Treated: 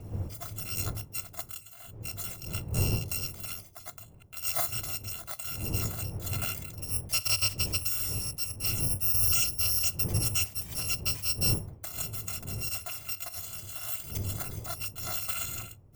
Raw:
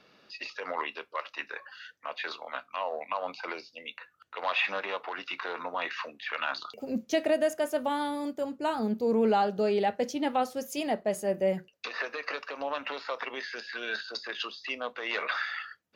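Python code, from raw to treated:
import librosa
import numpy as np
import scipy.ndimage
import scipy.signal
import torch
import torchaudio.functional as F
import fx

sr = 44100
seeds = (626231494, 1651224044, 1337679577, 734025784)

y = fx.bit_reversed(x, sr, seeds[0], block=256)
y = fx.dmg_wind(y, sr, seeds[1], corner_hz=250.0, level_db=-42.0)
y = fx.graphic_eq_15(y, sr, hz=(100, 250, 1600, 4000, 10000), db=(12, -7, -5, -6, -3))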